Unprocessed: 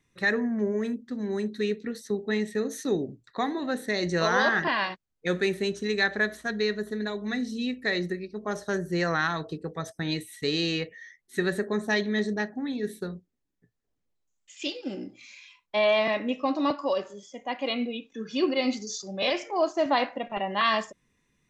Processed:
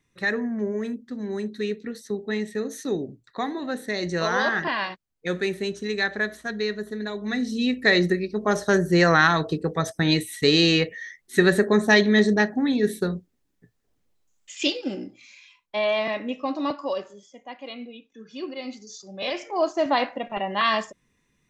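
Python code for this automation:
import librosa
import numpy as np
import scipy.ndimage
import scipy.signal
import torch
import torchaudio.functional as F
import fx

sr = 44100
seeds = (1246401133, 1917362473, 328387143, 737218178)

y = fx.gain(x, sr, db=fx.line((7.03, 0.0), (7.89, 9.0), (14.64, 9.0), (15.21, -1.0), (16.96, -1.0), (17.62, -8.5), (18.8, -8.5), (19.63, 2.0)))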